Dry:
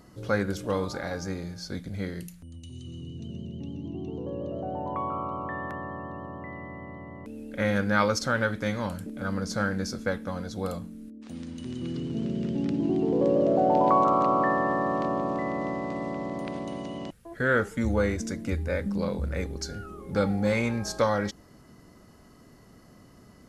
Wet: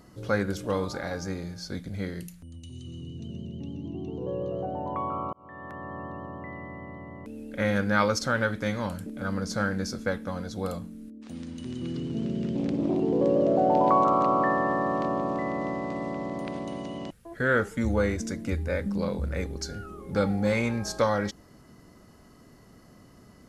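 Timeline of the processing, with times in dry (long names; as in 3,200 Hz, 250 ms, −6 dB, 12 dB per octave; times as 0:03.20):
0:04.20–0:04.66: double-tracking delay 16 ms −4 dB
0:05.33–0:06.01: fade in
0:12.55–0:13.00: highs frequency-modulated by the lows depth 0.39 ms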